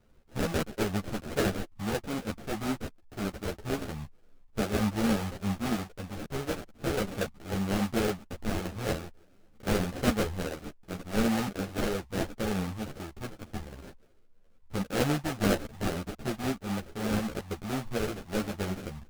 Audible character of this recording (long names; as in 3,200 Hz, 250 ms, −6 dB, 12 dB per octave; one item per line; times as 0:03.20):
aliases and images of a low sample rate 1,000 Hz, jitter 20%
a shimmering, thickened sound